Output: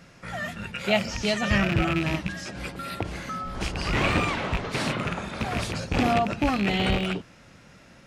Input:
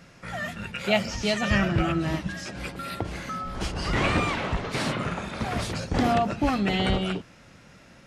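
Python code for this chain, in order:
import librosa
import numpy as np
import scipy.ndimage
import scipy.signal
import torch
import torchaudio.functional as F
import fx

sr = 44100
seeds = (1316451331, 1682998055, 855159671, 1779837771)

y = fx.rattle_buzz(x, sr, strikes_db=-27.0, level_db=-18.0)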